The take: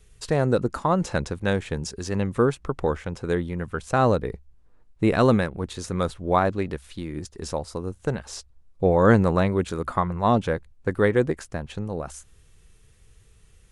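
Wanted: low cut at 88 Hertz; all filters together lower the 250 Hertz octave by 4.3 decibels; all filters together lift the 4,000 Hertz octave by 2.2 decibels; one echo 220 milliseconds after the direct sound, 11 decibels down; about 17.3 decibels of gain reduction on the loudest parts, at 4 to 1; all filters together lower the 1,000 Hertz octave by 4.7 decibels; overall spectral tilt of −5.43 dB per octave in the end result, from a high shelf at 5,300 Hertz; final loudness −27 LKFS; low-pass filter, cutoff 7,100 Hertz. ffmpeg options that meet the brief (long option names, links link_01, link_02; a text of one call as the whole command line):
ffmpeg -i in.wav -af "highpass=88,lowpass=7100,equalizer=frequency=250:width_type=o:gain=-5.5,equalizer=frequency=1000:width_type=o:gain=-6,equalizer=frequency=4000:width_type=o:gain=6,highshelf=frequency=5300:gain=-6.5,acompressor=threshold=-38dB:ratio=4,aecho=1:1:220:0.282,volume=13.5dB" out.wav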